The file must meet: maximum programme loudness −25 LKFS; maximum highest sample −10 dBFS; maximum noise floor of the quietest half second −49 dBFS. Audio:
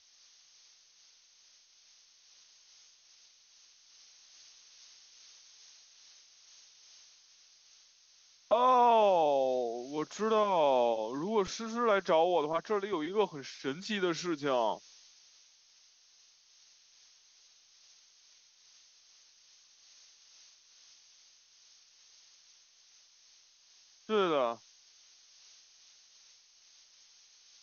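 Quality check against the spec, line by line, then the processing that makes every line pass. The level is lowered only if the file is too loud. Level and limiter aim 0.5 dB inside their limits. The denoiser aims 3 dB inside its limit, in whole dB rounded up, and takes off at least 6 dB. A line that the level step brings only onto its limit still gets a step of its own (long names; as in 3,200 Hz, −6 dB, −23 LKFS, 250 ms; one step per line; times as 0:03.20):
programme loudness −30.0 LKFS: in spec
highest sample −15.5 dBFS: in spec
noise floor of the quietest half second −64 dBFS: in spec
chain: no processing needed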